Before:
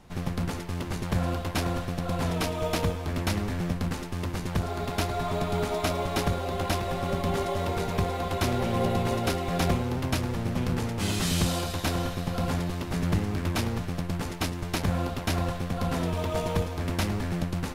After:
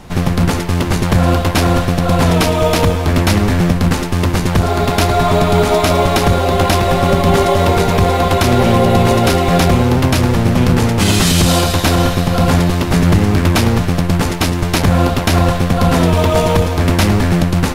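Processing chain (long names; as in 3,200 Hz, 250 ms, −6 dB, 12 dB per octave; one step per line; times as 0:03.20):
boost into a limiter +18 dB
level −1 dB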